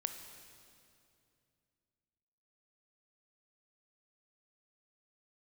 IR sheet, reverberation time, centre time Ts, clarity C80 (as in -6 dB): 2.6 s, 35 ms, 8.5 dB